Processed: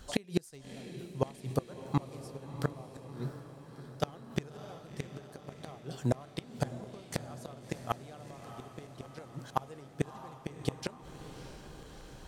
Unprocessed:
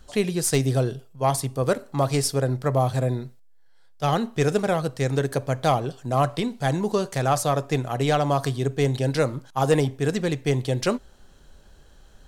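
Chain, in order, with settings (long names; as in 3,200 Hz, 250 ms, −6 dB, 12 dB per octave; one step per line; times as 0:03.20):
high-pass filter 47 Hz 6 dB per octave
gate with flip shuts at −16 dBFS, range −32 dB
on a send: feedback delay with all-pass diffusion 657 ms, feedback 64%, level −11.5 dB
on the sum: level +2 dB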